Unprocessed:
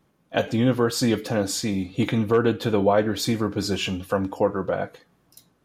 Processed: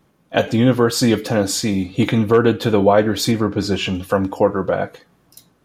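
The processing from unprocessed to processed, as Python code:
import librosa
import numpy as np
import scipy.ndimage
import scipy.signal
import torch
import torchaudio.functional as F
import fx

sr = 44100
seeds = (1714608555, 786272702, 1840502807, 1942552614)

y = fx.lowpass(x, sr, hz=3900.0, slope=6, at=(3.31, 3.95))
y = y * 10.0 ** (6.0 / 20.0)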